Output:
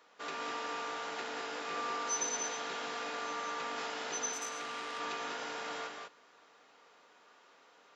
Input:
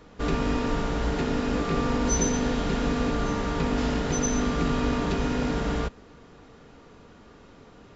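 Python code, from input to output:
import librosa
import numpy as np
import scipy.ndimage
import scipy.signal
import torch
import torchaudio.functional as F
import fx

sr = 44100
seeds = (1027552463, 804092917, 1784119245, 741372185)

p1 = scipy.signal.sosfilt(scipy.signal.butter(2, 770.0, 'highpass', fs=sr, output='sos'), x)
p2 = p1 + fx.echo_multitap(p1, sr, ms=(176, 199), db=(-8.0, -5.5), dry=0)
p3 = fx.transformer_sat(p2, sr, knee_hz=2900.0, at=(4.33, 5.0))
y = p3 * librosa.db_to_amplitude(-6.5)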